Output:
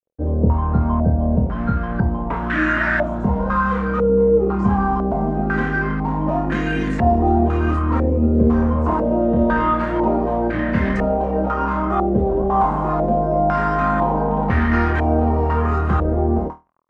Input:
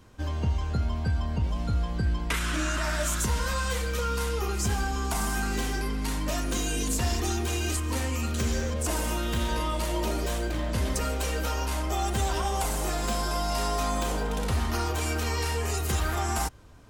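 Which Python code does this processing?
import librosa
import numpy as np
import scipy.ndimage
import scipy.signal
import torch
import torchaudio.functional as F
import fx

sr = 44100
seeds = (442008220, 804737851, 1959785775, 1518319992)

y = fx.peak_eq(x, sr, hz=200.0, db=10.0, octaves=0.99)
y = np.sign(y) * np.maximum(np.abs(y) - 10.0 ** (-41.5 / 20.0), 0.0)
y = fx.room_flutter(y, sr, wall_m=4.4, rt60_s=0.24)
y = fx.filter_held_lowpass(y, sr, hz=2.0, low_hz=510.0, high_hz=1800.0)
y = F.gain(torch.from_numpy(y), 5.0).numpy()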